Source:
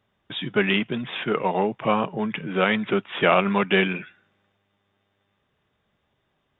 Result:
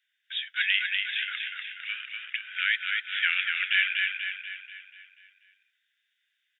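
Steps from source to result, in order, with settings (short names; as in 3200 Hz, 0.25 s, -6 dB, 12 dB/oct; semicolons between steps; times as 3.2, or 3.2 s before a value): steep high-pass 1500 Hz 96 dB/oct; on a send: feedback echo 0.243 s, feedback 51%, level -4 dB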